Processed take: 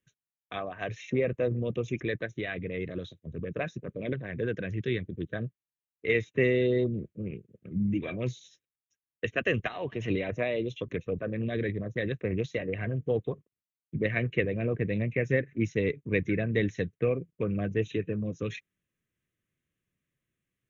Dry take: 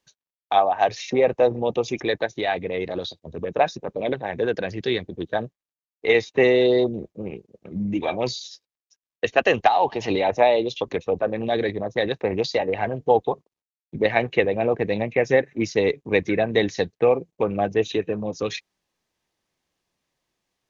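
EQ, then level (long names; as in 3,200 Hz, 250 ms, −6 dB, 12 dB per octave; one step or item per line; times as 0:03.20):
parametric band 120 Hz +9.5 dB 1.5 octaves
phaser with its sweep stopped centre 2,000 Hz, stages 4
−6.0 dB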